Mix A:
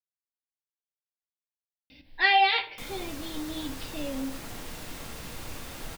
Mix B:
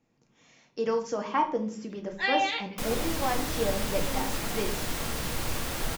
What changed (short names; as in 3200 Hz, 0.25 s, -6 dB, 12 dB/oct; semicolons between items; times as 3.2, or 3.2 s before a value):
speech: unmuted; first sound -6.0 dB; second sound +8.5 dB